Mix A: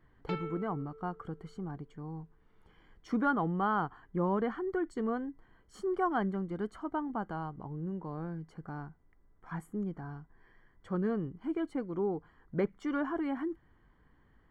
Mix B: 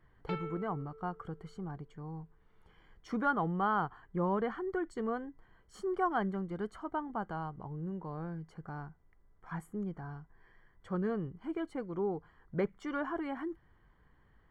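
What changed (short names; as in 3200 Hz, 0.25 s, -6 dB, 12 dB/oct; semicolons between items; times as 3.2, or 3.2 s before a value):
background: add air absorption 98 m; master: add bell 270 Hz -6 dB 0.64 oct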